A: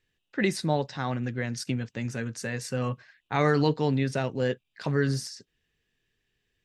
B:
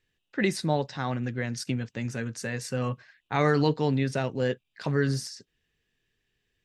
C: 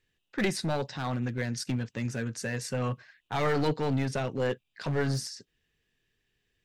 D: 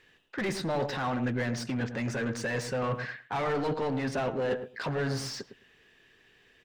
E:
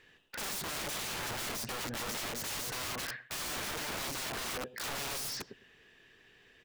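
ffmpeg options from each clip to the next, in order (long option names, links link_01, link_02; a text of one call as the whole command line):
ffmpeg -i in.wav -af anull out.wav
ffmpeg -i in.wav -af "aeval=exprs='clip(val(0),-1,0.0501)':channel_layout=same" out.wav
ffmpeg -i in.wav -filter_complex "[0:a]areverse,acompressor=threshold=-38dB:ratio=6,areverse,asplit=2[link_01][link_02];[link_02]highpass=frequency=720:poles=1,volume=20dB,asoftclip=type=tanh:threshold=-30dB[link_03];[link_01][link_03]amix=inputs=2:normalize=0,lowpass=frequency=1500:poles=1,volume=-6dB,asplit=2[link_04][link_05];[link_05]adelay=107,lowpass=frequency=840:poles=1,volume=-8dB,asplit=2[link_06][link_07];[link_07]adelay=107,lowpass=frequency=840:poles=1,volume=0.16,asplit=2[link_08][link_09];[link_09]adelay=107,lowpass=frequency=840:poles=1,volume=0.16[link_10];[link_04][link_06][link_08][link_10]amix=inputs=4:normalize=0,volume=8dB" out.wav
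ffmpeg -i in.wav -af "aeval=exprs='(mod(44.7*val(0)+1,2)-1)/44.7':channel_layout=same" out.wav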